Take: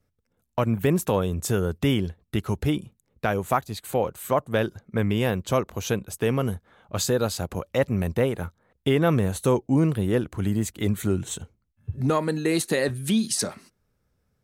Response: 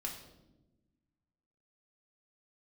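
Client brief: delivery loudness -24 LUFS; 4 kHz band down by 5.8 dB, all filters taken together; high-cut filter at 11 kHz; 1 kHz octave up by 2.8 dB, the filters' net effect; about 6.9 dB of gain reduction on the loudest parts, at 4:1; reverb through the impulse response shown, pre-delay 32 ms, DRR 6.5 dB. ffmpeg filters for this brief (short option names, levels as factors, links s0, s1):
-filter_complex "[0:a]lowpass=11000,equalizer=f=1000:t=o:g=4,equalizer=f=4000:t=o:g=-8,acompressor=threshold=0.0631:ratio=4,asplit=2[s0][s1];[1:a]atrim=start_sample=2205,adelay=32[s2];[s1][s2]afir=irnorm=-1:irlink=0,volume=0.501[s3];[s0][s3]amix=inputs=2:normalize=0,volume=1.78"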